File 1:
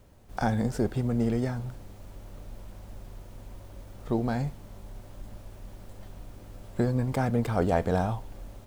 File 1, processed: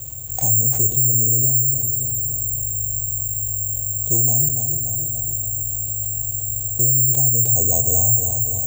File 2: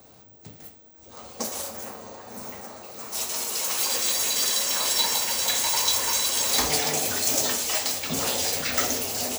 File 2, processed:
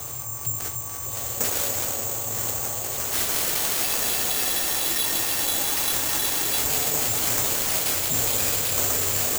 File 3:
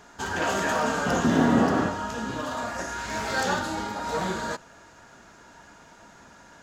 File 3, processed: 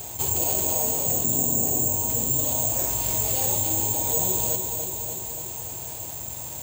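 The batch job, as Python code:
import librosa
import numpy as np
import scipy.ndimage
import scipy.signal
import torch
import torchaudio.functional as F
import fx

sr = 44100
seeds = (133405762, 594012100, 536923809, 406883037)

p1 = 10.0 ** (-24.5 / 20.0) * np.tanh(x / 10.0 ** (-24.5 / 20.0))
p2 = x + F.gain(torch.from_numpy(p1), -3.0).numpy()
p3 = scipy.signal.sosfilt(scipy.signal.cheby1(2, 1.0, [780.0, 3000.0], 'bandstop', fs=sr, output='sos'), p2)
p4 = fx.low_shelf_res(p3, sr, hz=150.0, db=8.5, q=3.0)
p5 = fx.rider(p4, sr, range_db=4, speed_s=0.5)
p6 = scipy.signal.sosfilt(scipy.signal.butter(2, 67.0, 'highpass', fs=sr, output='sos'), p5)
p7 = fx.dynamic_eq(p6, sr, hz=330.0, q=0.74, threshold_db=-35.0, ratio=4.0, max_db=5)
p8 = (np.kron(p7[::6], np.eye(6)[0]) * 6)[:len(p7)]
p9 = p8 + fx.echo_feedback(p8, sr, ms=289, feedback_pct=55, wet_db=-10.5, dry=0)
p10 = fx.env_flatten(p9, sr, amount_pct=50)
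y = F.gain(torch.from_numpy(p10), -11.5).numpy()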